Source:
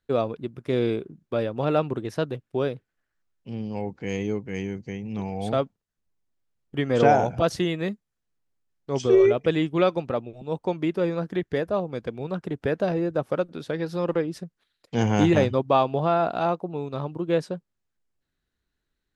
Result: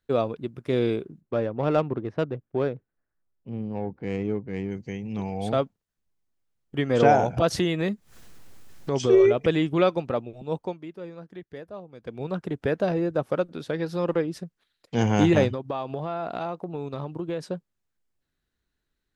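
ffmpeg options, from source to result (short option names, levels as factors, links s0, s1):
-filter_complex "[0:a]asplit=3[s0][s1][s2];[s0]afade=t=out:st=1.2:d=0.02[s3];[s1]adynamicsmooth=sensitivity=1.5:basefreq=1400,afade=t=in:st=1.2:d=0.02,afade=t=out:st=4.7:d=0.02[s4];[s2]afade=t=in:st=4.7:d=0.02[s5];[s3][s4][s5]amix=inputs=3:normalize=0,asettb=1/sr,asplit=3[s6][s7][s8];[s6]atrim=end=7.374[s9];[s7]atrim=start=7.37:end=9.84,asetpts=PTS-STARTPTS,afade=t=in:d=0.004:c=qsin,afade=t=out:st=2.466:d=0.004:c=qsin,acompressor=mode=upward:threshold=0.112:ratio=2.5:attack=3.2:release=140:knee=2.83:detection=peak[s10];[s8]atrim=start=9.836[s11];[s9][s10]acrossfade=d=0.004:c1=hsin:c2=qsin[s12];[s12][s11]acrossfade=d=0.004:c1=qsin:c2=hsin,asettb=1/sr,asplit=3[s13][s14][s15];[s13]atrim=end=15.514[s16];[s14]atrim=start=15.51:end=17.43,asetpts=PTS-STARTPTS,afade=t=in:d=0.004:c=qsin,afade=t=out:st=1.916:d=0.004:c=qsin,acompressor=threshold=0.0501:ratio=6:attack=3.2:release=140:knee=1:detection=peak[s17];[s15]atrim=start=17.426[s18];[s16][s17]acrossfade=d=0.004:c1=hsin:c2=qsin[s19];[s19][s18]acrossfade=d=0.004:c1=qsin:c2=hsin,asplit=3[s20][s21][s22];[s20]atrim=end=10.79,asetpts=PTS-STARTPTS,afade=t=out:st=10.56:d=0.23:silence=0.199526[s23];[s21]atrim=start=10.79:end=11.99,asetpts=PTS-STARTPTS,volume=0.2[s24];[s22]atrim=start=11.99,asetpts=PTS-STARTPTS,afade=t=in:d=0.23:silence=0.199526[s25];[s23][s24][s25]concat=n=3:v=0:a=1"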